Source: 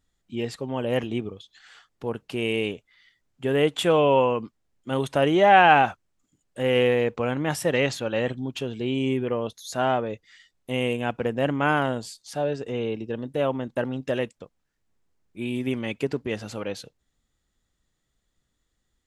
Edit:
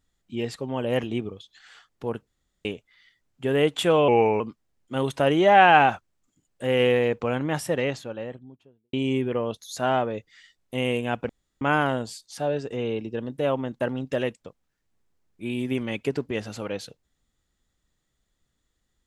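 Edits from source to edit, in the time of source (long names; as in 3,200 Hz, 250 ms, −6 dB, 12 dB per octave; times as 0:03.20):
0:02.27–0:02.65: fill with room tone
0:04.08–0:04.36: play speed 87%
0:07.24–0:08.89: fade out and dull
0:11.25–0:11.57: fill with room tone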